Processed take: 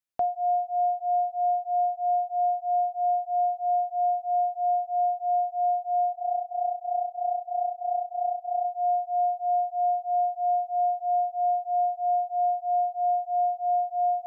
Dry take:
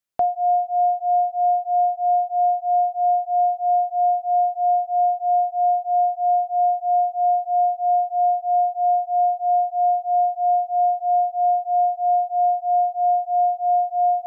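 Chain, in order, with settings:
0:06.12–0:08.65: amplitude modulation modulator 30 Hz, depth 55%
level −6 dB

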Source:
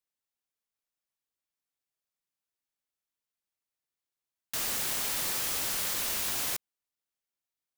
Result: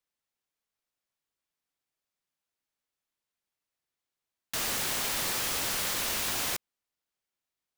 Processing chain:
high-shelf EQ 6,700 Hz −6 dB
level +4 dB

